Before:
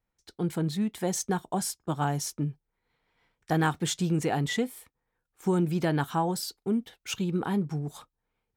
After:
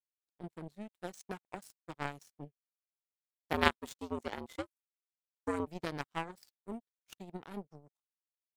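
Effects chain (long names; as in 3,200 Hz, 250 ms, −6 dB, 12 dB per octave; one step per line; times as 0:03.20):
0:03.53–0:05.67: frequency shifter +89 Hz
power curve on the samples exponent 3
level +6 dB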